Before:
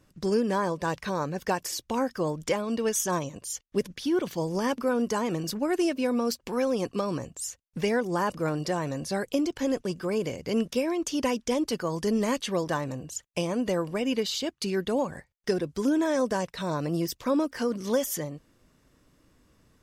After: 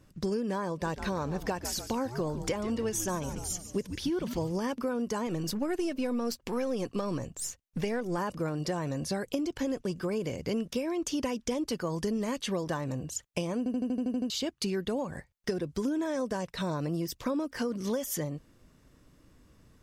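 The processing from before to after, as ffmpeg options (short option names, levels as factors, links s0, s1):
-filter_complex "[0:a]asettb=1/sr,asplit=3[s0][s1][s2];[s0]atrim=end=0.704[s3];[s1]atrim=start=0.7:end=4.51,asetpts=PTS-STARTPTS,afade=t=in:d=0.004:c=qsin,afade=t=out:st=3.806:d=0.004:c=qsin,asplit=7[s4][s5][s6][s7][s8][s9][s10];[s5]adelay=144,afreqshift=-120,volume=0.224[s11];[s6]adelay=288,afreqshift=-240,volume=0.123[s12];[s7]adelay=432,afreqshift=-360,volume=0.0676[s13];[s8]adelay=576,afreqshift=-480,volume=0.0372[s14];[s9]adelay=720,afreqshift=-600,volume=0.0204[s15];[s10]adelay=864,afreqshift=-720,volume=0.0112[s16];[s4][s11][s12][s13][s14][s15][s16]amix=inputs=7:normalize=0,atrim=end_sample=168021[s17];[s2]atrim=start=4.506[s18];[s3][s17]acrossfade=d=0.004:c1=hsin:c2=qsin[s19];[s19][s18]acrossfade=d=0.004:c1=qsin:c2=hsin,asettb=1/sr,asplit=3[s20][s21][s22];[s20]atrim=end=5.274[s23];[s21]atrim=start=5.27:end=8.18,asetpts=PTS-STARTPTS,afade=t=in:d=0.004:c=qsin,afade=t=out:st=2.906:d=0.004:c=qsin,aeval=exprs='if(lt(val(0),0),0.708*val(0),val(0))':c=same[s24];[s22]atrim=start=8.176[s25];[s23][s24]acrossfade=d=0.004:c1=hsin:c2=qsin[s26];[s26][s25]acrossfade=d=0.004:c1=qsin:c2=hsin,asplit=10[s27][s28][s29][s30][s31][s32][s33][s34][s35][s36];[s27]atrim=end=13.662[s37];[s28]atrim=start=13.578:end=13.662[s38];[s29]atrim=start=13.578:end=13.662[s39];[s30]atrim=start=13.578:end=13.662[s40];[s31]atrim=start=13.578:end=13.662[s41];[s32]atrim=start=13.578:end=13.662[s42];[s33]atrim=start=13.578:end=13.662[s43];[s34]atrim=start=13.578:end=13.662[s44];[s35]atrim=start=13.578:end=13.662[s45];[s36]atrim=start=14.298[s46];[s37][s38]acrossfade=d=0.004:c1=hsin:c2=hsin[s47];[s47][s39]acrossfade=d=0.004:c1=hsin:c2=hsin[s48];[s48][s40]acrossfade=d=0.004:c1=hsin:c2=hsin[s49];[s49][s41]acrossfade=d=0.004:c1=hsin:c2=hsin[s50];[s50][s42]acrossfade=d=0.004:c1=hsin:c2=hsin[s51];[s51][s43]acrossfade=d=0.004:c1=hsin:c2=hsin[s52];[s52][s44]acrossfade=d=0.004:c1=hsin:c2=hsin[s53];[s53][s45]acrossfade=d=0.004:c1=hsin:c2=hsin[s54];[s54][s46]acrossfade=d=0.004:c1=hsin:c2=hsin,lowshelf=f=230:g=5,acompressor=threshold=0.0398:ratio=6"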